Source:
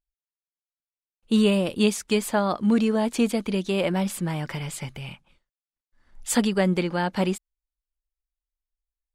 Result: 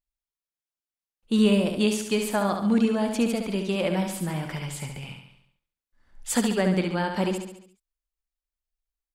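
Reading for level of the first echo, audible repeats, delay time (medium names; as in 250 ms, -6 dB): -6.0 dB, 6, 70 ms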